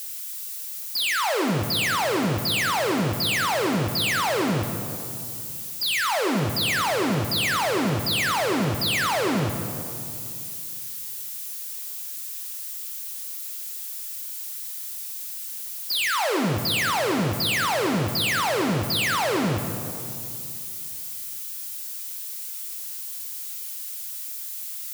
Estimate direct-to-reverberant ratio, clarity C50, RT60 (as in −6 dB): 4.5 dB, 6.5 dB, 2.6 s